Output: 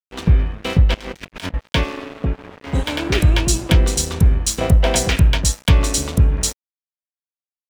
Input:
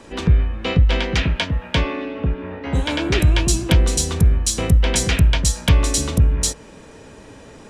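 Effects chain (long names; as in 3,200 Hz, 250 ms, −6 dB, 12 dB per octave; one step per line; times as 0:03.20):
0:00.94–0:01.54: compressor whose output falls as the input rises −29 dBFS, ratio −1
0:04.61–0:05.10: parametric band 670 Hz +11.5 dB 0.67 octaves
dead-zone distortion −29.5 dBFS
level +2 dB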